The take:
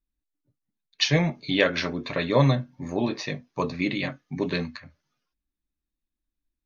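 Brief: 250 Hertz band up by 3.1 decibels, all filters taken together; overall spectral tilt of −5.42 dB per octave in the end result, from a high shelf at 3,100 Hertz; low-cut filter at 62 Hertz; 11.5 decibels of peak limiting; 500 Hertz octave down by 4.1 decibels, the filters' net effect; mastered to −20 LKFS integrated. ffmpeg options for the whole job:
ffmpeg -i in.wav -af "highpass=62,equalizer=frequency=250:width_type=o:gain=6,equalizer=frequency=500:width_type=o:gain=-6.5,highshelf=frequency=3100:gain=-6.5,volume=10dB,alimiter=limit=-9dB:level=0:latency=1" out.wav

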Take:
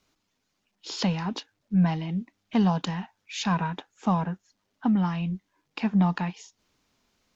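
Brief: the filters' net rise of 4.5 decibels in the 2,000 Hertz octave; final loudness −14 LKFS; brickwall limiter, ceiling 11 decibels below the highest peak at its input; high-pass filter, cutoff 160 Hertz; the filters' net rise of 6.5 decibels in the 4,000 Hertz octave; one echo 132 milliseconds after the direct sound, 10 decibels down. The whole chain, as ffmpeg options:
ffmpeg -i in.wav -af "highpass=160,equalizer=frequency=2000:width_type=o:gain=4,equalizer=frequency=4000:width_type=o:gain=7,alimiter=limit=-20.5dB:level=0:latency=1,aecho=1:1:132:0.316,volume=17dB" out.wav

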